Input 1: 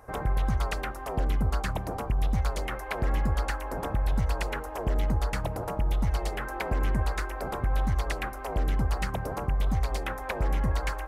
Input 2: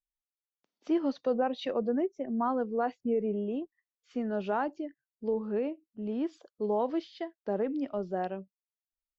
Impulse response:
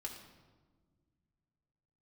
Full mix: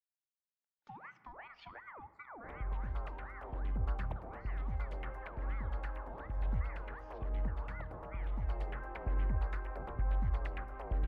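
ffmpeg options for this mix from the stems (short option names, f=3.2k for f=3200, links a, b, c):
-filter_complex "[0:a]bass=f=250:g=5,treble=f=4k:g=-12,adelay=2350,volume=-3.5dB,asplit=2[a][b];[b]volume=-13.5dB[c];[1:a]acompressor=threshold=-32dB:ratio=6,agate=range=-15dB:threshold=-58dB:ratio=16:detection=peak,aeval=exprs='val(0)*sin(2*PI*1100*n/s+1100*0.6/2.7*sin(2*PI*2.7*n/s))':c=same,volume=-9.5dB,asplit=3[d][e][f];[e]volume=-5.5dB[g];[f]apad=whole_len=591978[h];[a][h]sidechaincompress=threshold=-51dB:ratio=8:attack=27:release=521[i];[2:a]atrim=start_sample=2205[j];[c][g]amix=inputs=2:normalize=0[k];[k][j]afir=irnorm=-1:irlink=0[l];[i][d][l]amix=inputs=3:normalize=0,bass=f=250:g=-9,treble=f=4k:g=-12,acrossover=split=130[m][n];[n]acompressor=threshold=-51dB:ratio=2[o];[m][o]amix=inputs=2:normalize=0"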